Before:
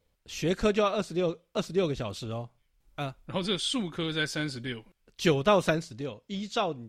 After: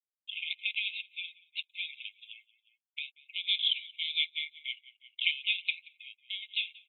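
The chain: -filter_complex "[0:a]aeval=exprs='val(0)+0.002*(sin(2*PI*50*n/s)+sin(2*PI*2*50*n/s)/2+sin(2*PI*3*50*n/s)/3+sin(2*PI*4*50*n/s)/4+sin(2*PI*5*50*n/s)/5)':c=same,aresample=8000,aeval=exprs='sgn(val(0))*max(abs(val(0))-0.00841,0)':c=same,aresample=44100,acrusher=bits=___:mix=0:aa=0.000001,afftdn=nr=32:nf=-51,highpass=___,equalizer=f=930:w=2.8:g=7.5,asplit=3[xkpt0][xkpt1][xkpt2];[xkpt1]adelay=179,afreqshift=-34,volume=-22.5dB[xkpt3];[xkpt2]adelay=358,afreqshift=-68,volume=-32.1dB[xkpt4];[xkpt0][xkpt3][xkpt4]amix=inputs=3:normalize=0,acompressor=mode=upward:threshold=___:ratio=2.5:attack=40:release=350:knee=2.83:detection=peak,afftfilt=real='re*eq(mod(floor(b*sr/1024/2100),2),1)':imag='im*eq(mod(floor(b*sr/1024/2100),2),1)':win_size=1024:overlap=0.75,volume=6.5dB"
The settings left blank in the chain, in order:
9, 640, -42dB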